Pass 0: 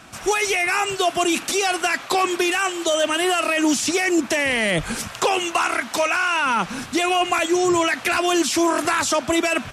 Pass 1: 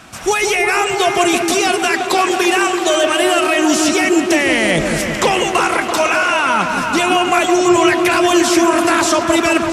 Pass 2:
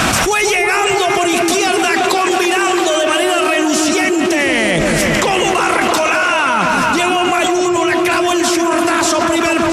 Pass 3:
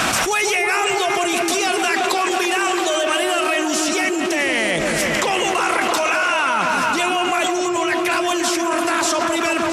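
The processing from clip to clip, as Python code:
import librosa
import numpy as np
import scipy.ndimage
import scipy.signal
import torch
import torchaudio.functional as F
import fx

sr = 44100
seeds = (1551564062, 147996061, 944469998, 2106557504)

y1 = fx.echo_opening(x, sr, ms=167, hz=750, octaves=1, feedback_pct=70, wet_db=-3)
y1 = y1 * 10.0 ** (4.5 / 20.0)
y2 = fx.env_flatten(y1, sr, amount_pct=100)
y2 = y2 * 10.0 ** (-5.5 / 20.0)
y3 = fx.low_shelf(y2, sr, hz=230.0, db=-9.5)
y3 = y3 * 10.0 ** (-4.0 / 20.0)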